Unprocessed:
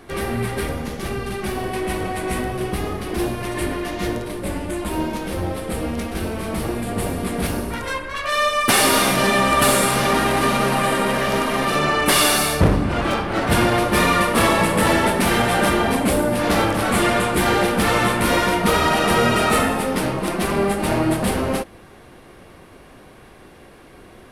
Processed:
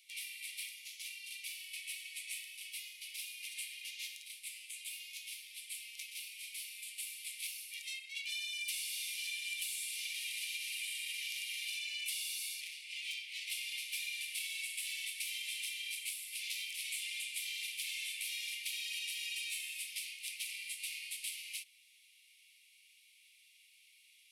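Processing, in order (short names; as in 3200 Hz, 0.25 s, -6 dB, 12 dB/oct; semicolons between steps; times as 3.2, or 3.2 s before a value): steep high-pass 2200 Hz 96 dB/oct; compressor 12:1, threshold -29 dBFS, peak gain reduction 14.5 dB; gain -8 dB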